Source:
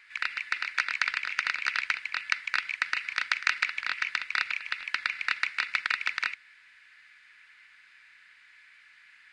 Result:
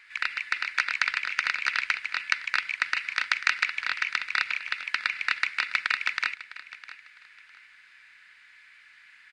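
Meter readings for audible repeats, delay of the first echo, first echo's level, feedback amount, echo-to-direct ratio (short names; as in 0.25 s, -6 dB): 2, 0.656 s, -16.5 dB, 25%, -16.0 dB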